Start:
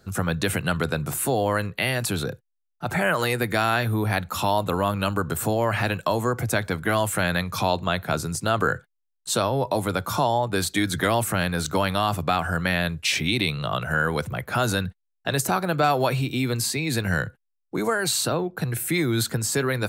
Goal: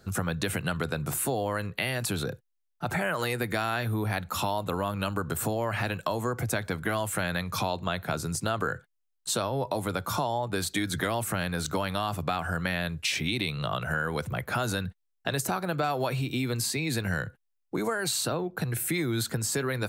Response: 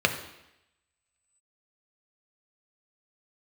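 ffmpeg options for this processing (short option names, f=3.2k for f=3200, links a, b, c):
-af "acompressor=threshold=-28dB:ratio=2.5"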